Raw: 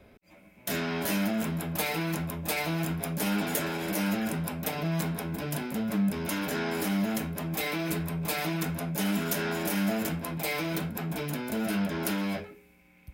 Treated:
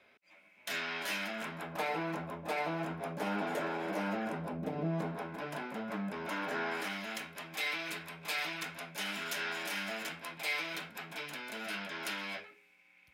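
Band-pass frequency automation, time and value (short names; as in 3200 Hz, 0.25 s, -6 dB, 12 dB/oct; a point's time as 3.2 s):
band-pass, Q 0.76
1.25 s 2400 Hz
1.9 s 810 Hz
4.36 s 810 Hz
4.71 s 260 Hz
5.31 s 1100 Hz
6.6 s 1100 Hz
7.01 s 2600 Hz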